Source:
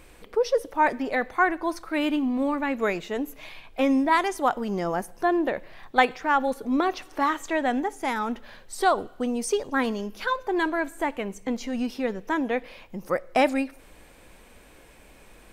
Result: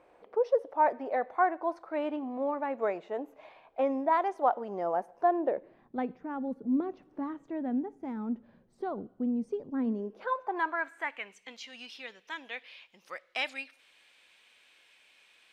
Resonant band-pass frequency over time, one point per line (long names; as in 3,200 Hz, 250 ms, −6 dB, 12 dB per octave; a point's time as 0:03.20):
resonant band-pass, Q 1.8
0:05.35 680 Hz
0:05.96 200 Hz
0:09.84 200 Hz
0:10.35 780 Hz
0:11.54 3,200 Hz